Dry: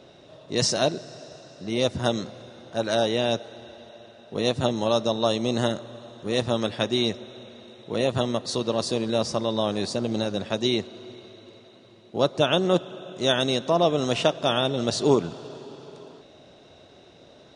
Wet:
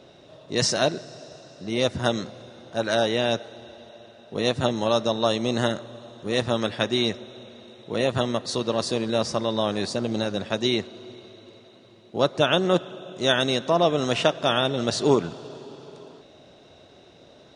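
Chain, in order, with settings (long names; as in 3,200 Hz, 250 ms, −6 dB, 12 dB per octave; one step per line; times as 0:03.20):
dynamic equaliser 1,700 Hz, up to +5 dB, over −40 dBFS, Q 1.3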